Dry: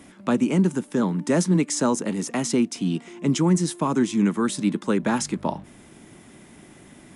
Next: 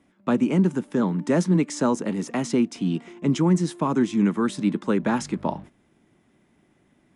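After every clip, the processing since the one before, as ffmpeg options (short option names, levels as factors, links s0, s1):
-af "agate=range=0.2:threshold=0.01:ratio=16:detection=peak,aemphasis=mode=reproduction:type=50kf"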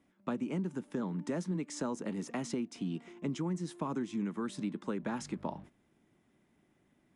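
-af "acompressor=threshold=0.0631:ratio=4,volume=0.376"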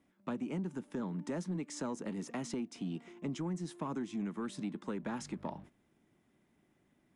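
-af "asoftclip=type=tanh:threshold=0.0501,volume=0.841"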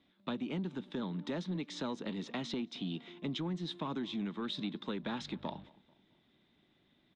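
-filter_complex "[0:a]lowpass=f=3700:t=q:w=7.8,asplit=2[s0][s1];[s1]adelay=219,lowpass=f=2000:p=1,volume=0.0708,asplit=2[s2][s3];[s3]adelay=219,lowpass=f=2000:p=1,volume=0.44,asplit=2[s4][s5];[s5]adelay=219,lowpass=f=2000:p=1,volume=0.44[s6];[s0][s2][s4][s6]amix=inputs=4:normalize=0"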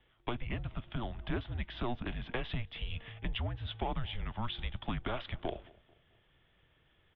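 -af "highpass=f=250:t=q:w=0.5412,highpass=f=250:t=q:w=1.307,lowpass=f=3400:t=q:w=0.5176,lowpass=f=3400:t=q:w=0.7071,lowpass=f=3400:t=q:w=1.932,afreqshift=-240,volume=1.78"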